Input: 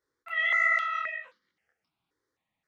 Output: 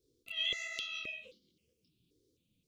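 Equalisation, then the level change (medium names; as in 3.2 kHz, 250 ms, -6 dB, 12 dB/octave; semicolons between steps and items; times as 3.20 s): inverse Chebyshev band-stop 710–1900 Hz, stop band 40 dB; bass shelf 420 Hz +8 dB; peaking EQ 1.2 kHz +11 dB 0.98 oct; +6.5 dB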